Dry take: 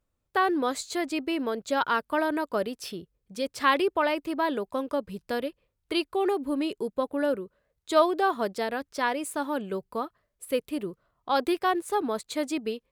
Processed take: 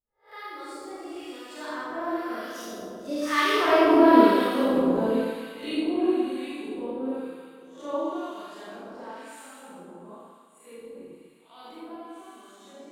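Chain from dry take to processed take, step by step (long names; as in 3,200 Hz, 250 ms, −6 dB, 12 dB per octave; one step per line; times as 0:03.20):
peak hold with a rise ahead of every peak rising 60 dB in 0.31 s
source passing by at 0:04.09, 32 m/s, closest 14 metres
dynamic equaliser 290 Hz, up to +8 dB, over −47 dBFS, Q 1.1
four-comb reverb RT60 2.4 s, combs from 27 ms, DRR −10 dB
two-band tremolo in antiphase 1 Hz, depth 70%, crossover 1,200 Hz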